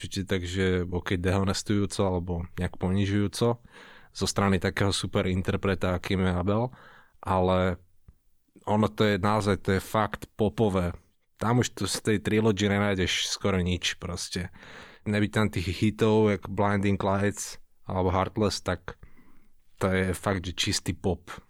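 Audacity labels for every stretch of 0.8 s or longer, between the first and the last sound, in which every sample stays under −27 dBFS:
7.730000	8.680000	silence
18.900000	19.810000	silence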